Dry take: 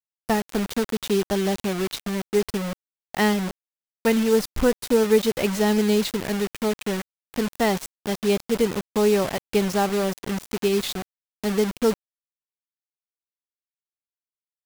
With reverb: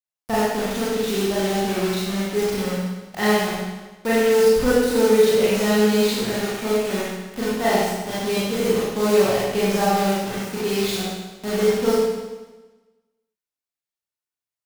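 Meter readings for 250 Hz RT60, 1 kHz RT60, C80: 1.2 s, 1.2 s, 0.5 dB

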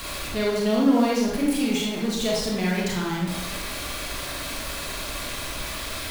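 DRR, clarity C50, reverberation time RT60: −4.0 dB, 0.0 dB, 0.95 s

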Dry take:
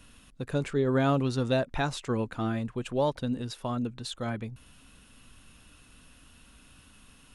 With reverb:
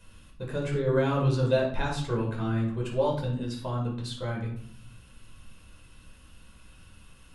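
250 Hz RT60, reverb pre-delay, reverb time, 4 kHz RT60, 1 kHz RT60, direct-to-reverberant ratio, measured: 0.95 s, 9 ms, 0.60 s, 0.40 s, 0.60 s, −2.5 dB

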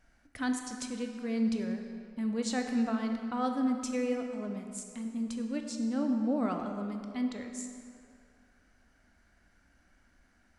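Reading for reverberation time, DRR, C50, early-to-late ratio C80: 2.4 s, 4.0 dB, 5.0 dB, 6.0 dB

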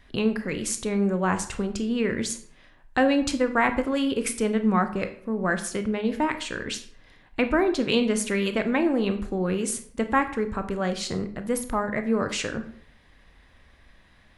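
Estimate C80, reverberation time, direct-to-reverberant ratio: 15.5 dB, 0.60 s, 8.0 dB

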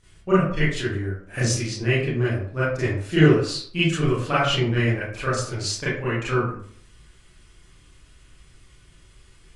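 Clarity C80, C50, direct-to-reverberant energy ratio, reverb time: 6.5 dB, 1.5 dB, −11.5 dB, 0.55 s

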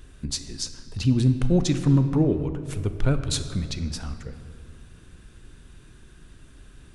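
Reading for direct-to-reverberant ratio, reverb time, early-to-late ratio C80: 9.0 dB, 2.4 s, 11.5 dB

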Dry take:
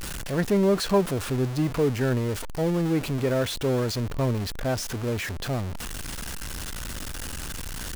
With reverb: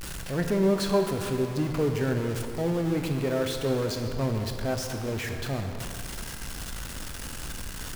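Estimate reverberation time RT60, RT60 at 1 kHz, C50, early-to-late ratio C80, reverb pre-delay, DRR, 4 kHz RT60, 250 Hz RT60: 2.5 s, 2.5 s, 5.0 dB, 6.0 dB, 18 ms, 4.0 dB, 1.7 s, 2.4 s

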